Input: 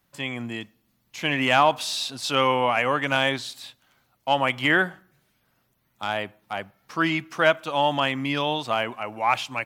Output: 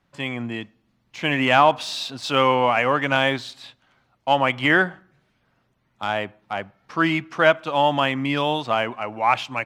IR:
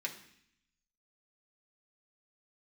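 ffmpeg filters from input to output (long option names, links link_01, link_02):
-af "highshelf=frequency=4400:gain=-7.5,adynamicsmooth=sensitivity=7.5:basefreq=7500,volume=3.5dB"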